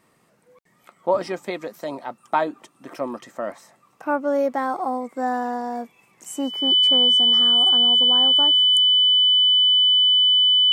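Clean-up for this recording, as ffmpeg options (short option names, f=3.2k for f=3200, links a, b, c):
-af "bandreject=f=3k:w=30"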